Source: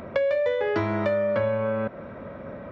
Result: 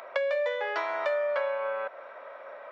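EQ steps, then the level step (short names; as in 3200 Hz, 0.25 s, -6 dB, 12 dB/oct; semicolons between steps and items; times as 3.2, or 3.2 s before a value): HPF 620 Hz 24 dB/oct; 0.0 dB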